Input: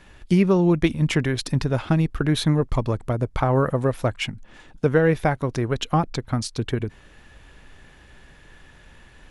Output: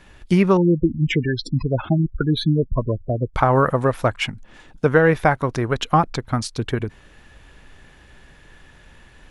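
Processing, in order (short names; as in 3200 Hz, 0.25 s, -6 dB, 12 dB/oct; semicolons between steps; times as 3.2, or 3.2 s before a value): 0.57–3.34 spectral gate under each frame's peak -15 dB strong; dynamic EQ 1200 Hz, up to +7 dB, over -36 dBFS, Q 0.74; gain +1 dB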